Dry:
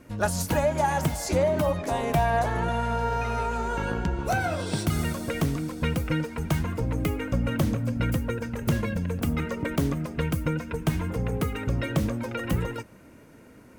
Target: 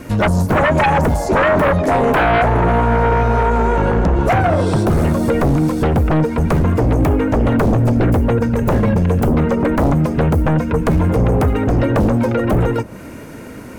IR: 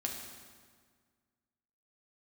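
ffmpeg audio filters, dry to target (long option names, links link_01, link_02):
-filter_complex "[0:a]acrossover=split=1100[link_01][link_02];[link_02]acompressor=threshold=-49dB:ratio=16[link_03];[link_01][link_03]amix=inputs=2:normalize=0,aeval=exprs='0.2*sin(PI/2*3.16*val(0)/0.2)':channel_layout=same,volume=4dB"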